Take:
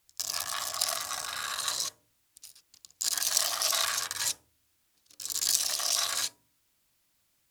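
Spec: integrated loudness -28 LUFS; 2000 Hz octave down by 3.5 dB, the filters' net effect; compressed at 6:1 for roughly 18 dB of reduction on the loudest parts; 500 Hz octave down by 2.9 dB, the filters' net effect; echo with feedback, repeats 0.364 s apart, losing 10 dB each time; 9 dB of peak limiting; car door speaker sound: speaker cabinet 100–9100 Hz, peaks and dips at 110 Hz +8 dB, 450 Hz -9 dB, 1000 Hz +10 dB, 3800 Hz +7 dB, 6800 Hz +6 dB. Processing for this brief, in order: bell 500 Hz -3.5 dB; bell 2000 Hz -5.5 dB; compressor 6:1, threshold -42 dBFS; limiter -30 dBFS; speaker cabinet 100–9100 Hz, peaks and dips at 110 Hz +8 dB, 450 Hz -9 dB, 1000 Hz +10 dB, 3800 Hz +7 dB, 6800 Hz +6 dB; feedback echo 0.364 s, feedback 32%, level -10 dB; gain +14 dB

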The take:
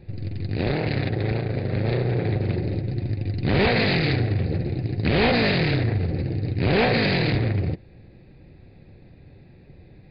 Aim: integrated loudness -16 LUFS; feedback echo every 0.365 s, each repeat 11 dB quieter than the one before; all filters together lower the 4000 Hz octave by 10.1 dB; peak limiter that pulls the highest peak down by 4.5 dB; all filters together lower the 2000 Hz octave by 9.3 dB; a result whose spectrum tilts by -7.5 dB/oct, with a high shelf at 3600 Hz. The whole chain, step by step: bell 2000 Hz -7.5 dB; high shelf 3600 Hz -8.5 dB; bell 4000 Hz -4.5 dB; limiter -16.5 dBFS; feedback echo 0.365 s, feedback 28%, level -11 dB; gain +10 dB

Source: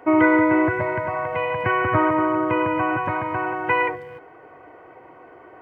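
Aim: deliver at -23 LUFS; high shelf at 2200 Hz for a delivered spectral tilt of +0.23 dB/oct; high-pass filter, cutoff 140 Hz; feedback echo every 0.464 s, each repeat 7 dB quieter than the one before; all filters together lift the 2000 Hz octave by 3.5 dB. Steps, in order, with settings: HPF 140 Hz; bell 2000 Hz +3 dB; high shelf 2200 Hz +3 dB; feedback echo 0.464 s, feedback 45%, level -7 dB; gain -4.5 dB

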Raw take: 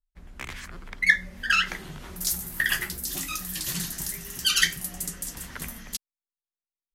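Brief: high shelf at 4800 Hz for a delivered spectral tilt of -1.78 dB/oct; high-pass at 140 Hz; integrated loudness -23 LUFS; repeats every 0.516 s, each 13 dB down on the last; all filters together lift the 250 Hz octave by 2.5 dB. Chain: HPF 140 Hz; bell 250 Hz +5.5 dB; high shelf 4800 Hz -4 dB; feedback echo 0.516 s, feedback 22%, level -13 dB; gain +4.5 dB

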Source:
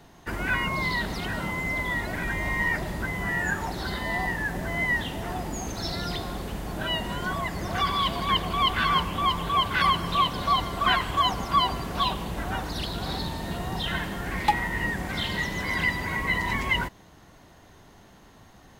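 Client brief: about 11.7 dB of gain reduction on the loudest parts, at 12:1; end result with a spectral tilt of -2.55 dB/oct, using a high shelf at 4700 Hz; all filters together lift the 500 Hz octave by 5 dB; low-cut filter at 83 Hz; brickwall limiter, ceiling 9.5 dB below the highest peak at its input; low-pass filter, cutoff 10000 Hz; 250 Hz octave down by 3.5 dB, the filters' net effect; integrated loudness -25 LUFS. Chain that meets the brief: HPF 83 Hz; LPF 10000 Hz; bell 250 Hz -8 dB; bell 500 Hz +9 dB; high shelf 4700 Hz -5.5 dB; compressor 12:1, threshold -27 dBFS; gain +8 dB; limiter -16.5 dBFS

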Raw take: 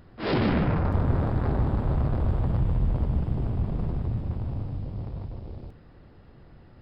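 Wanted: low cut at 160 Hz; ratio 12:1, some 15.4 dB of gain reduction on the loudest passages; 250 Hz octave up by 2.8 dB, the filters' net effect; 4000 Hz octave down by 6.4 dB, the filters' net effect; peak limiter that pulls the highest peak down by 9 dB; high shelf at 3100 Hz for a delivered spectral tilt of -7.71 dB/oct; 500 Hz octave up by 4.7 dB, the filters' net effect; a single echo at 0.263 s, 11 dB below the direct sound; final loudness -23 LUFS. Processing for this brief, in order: HPF 160 Hz; bell 250 Hz +4 dB; bell 500 Hz +5 dB; high shelf 3100 Hz -3 dB; bell 4000 Hz -6.5 dB; compressor 12:1, threshold -33 dBFS; limiter -33.5 dBFS; echo 0.263 s -11 dB; gain +19.5 dB

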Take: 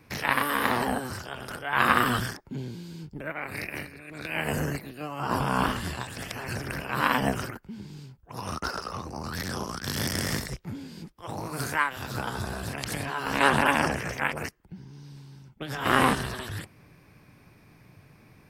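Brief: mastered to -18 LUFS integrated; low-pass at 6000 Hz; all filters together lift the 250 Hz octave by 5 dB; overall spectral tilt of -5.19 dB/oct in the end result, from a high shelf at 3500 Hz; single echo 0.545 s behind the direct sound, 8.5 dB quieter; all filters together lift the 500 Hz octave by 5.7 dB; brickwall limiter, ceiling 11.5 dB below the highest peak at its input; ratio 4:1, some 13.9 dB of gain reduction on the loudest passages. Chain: LPF 6000 Hz; bell 250 Hz +4.5 dB; bell 500 Hz +6 dB; high shelf 3500 Hz -6 dB; compressor 4:1, threshold -31 dBFS; limiter -27 dBFS; echo 0.545 s -8.5 dB; gain +20 dB

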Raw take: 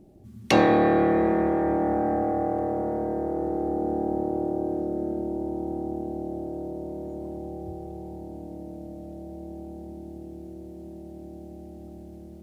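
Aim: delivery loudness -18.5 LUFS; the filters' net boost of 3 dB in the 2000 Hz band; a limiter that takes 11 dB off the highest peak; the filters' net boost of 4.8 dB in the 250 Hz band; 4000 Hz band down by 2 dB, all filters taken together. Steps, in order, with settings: bell 250 Hz +7 dB; bell 2000 Hz +4.5 dB; bell 4000 Hz -4.5 dB; gain +8 dB; limiter -6.5 dBFS

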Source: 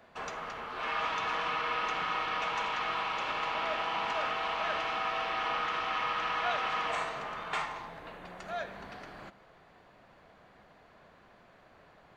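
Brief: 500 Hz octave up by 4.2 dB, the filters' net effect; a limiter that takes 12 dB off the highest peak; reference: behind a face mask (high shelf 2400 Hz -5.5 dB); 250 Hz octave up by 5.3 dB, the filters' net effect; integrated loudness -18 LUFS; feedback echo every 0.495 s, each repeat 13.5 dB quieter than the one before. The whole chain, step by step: bell 250 Hz +5.5 dB; bell 500 Hz +5 dB; limiter -30 dBFS; high shelf 2400 Hz -5.5 dB; feedback echo 0.495 s, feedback 21%, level -13.5 dB; gain +21.5 dB

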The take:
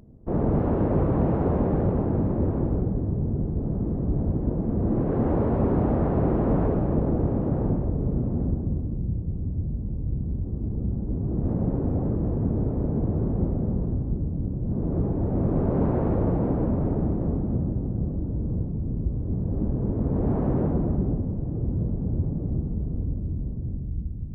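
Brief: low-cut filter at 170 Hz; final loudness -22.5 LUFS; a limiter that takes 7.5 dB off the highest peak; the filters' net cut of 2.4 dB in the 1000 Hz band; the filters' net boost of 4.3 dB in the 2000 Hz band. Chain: HPF 170 Hz; bell 1000 Hz -5 dB; bell 2000 Hz +8 dB; gain +8.5 dB; limiter -12.5 dBFS

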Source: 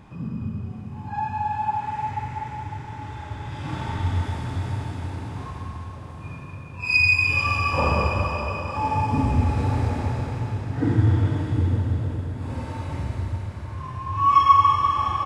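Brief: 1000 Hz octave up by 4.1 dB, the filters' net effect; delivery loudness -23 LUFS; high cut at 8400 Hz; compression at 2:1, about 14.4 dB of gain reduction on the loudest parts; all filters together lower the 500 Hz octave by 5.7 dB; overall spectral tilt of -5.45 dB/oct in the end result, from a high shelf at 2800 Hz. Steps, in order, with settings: LPF 8400 Hz; bell 500 Hz -9 dB; bell 1000 Hz +7 dB; high shelf 2800 Hz -4 dB; compressor 2:1, threshold -32 dBFS; gain +8 dB

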